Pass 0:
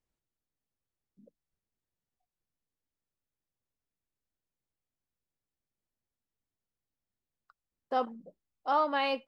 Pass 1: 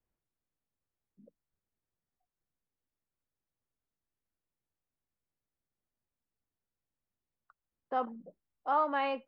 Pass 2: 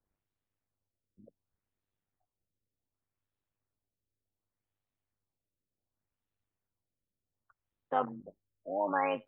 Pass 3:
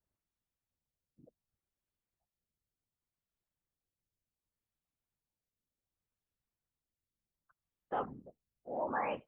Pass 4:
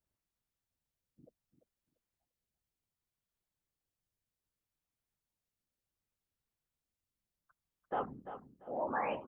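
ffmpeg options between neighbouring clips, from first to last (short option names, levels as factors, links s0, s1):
-filter_complex "[0:a]lowpass=2000,acrossover=split=220|670|1300[s0][s1][s2][s3];[s1]alimiter=level_in=3.16:limit=0.0631:level=0:latency=1,volume=0.316[s4];[s0][s4][s2][s3]amix=inputs=4:normalize=0"
-af "tremolo=f=100:d=0.75,afftfilt=real='re*lt(b*sr/1024,610*pow(4300/610,0.5+0.5*sin(2*PI*0.67*pts/sr)))':imag='im*lt(b*sr/1024,610*pow(4300/610,0.5+0.5*sin(2*PI*0.67*pts/sr)))':win_size=1024:overlap=0.75,volume=1.78"
-af "afftfilt=real='hypot(re,im)*cos(2*PI*random(0))':imag='hypot(re,im)*sin(2*PI*random(1))':win_size=512:overlap=0.75,volume=1.12"
-af "aecho=1:1:343|686|1029:0.282|0.062|0.0136"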